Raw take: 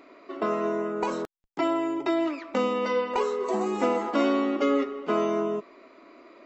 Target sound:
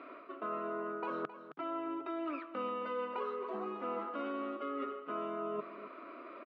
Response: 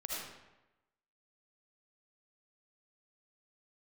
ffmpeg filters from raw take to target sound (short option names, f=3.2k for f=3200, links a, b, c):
-af "highpass=150,equalizer=f=150:t=q:w=4:g=6,equalizer=f=410:t=q:w=4:g=-3,equalizer=f=830:t=q:w=4:g=-7,equalizer=f=1.3k:t=q:w=4:g=7,equalizer=f=2k:t=q:w=4:g=-7,lowpass=f=2.9k:w=0.5412,lowpass=f=2.9k:w=1.3066,areverse,acompressor=threshold=-38dB:ratio=10,areverse,lowshelf=f=190:g=-11.5,aecho=1:1:266:0.237,volume=3.5dB"